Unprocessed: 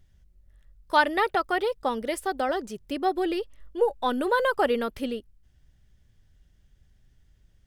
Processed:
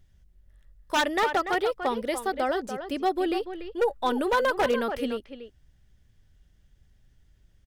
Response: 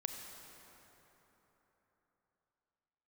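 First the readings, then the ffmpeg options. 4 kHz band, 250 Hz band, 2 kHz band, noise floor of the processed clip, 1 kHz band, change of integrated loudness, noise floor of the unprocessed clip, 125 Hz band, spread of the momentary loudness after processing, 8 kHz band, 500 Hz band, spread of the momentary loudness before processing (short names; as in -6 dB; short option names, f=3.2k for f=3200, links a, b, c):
+1.5 dB, 0.0 dB, -1.0 dB, -62 dBFS, -1.0 dB, -0.5 dB, -62 dBFS, n/a, 8 LU, +3.5 dB, 0.0 dB, 10 LU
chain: -filter_complex "[0:a]asplit=2[a][b];[b]adelay=290,highpass=300,lowpass=3.4k,asoftclip=type=hard:threshold=-15dB,volume=-9dB[c];[a][c]amix=inputs=2:normalize=0,aeval=exprs='0.15*(abs(mod(val(0)/0.15+3,4)-2)-1)':c=same"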